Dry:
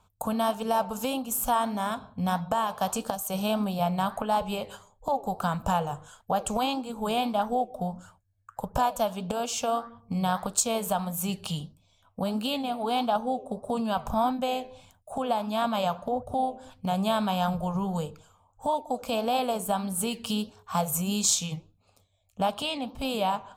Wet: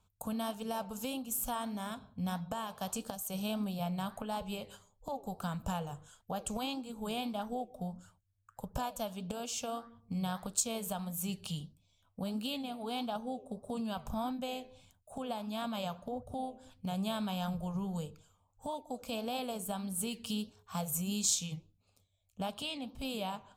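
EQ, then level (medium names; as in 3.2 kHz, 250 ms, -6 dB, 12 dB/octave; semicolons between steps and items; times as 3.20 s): peaking EQ 900 Hz -7.5 dB 2 oct; -6.0 dB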